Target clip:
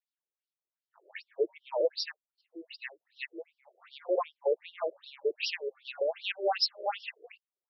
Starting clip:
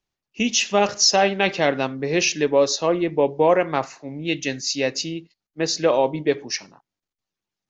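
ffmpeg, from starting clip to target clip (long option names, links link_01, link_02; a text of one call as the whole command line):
ffmpeg -i in.wav -af "areverse,afftfilt=real='re*between(b*sr/1024,440*pow(4100/440,0.5+0.5*sin(2*PI*2.6*pts/sr))/1.41,440*pow(4100/440,0.5+0.5*sin(2*PI*2.6*pts/sr))*1.41)':imag='im*between(b*sr/1024,440*pow(4100/440,0.5+0.5*sin(2*PI*2.6*pts/sr))/1.41,440*pow(4100/440,0.5+0.5*sin(2*PI*2.6*pts/sr))*1.41)':win_size=1024:overlap=0.75,volume=-8dB" out.wav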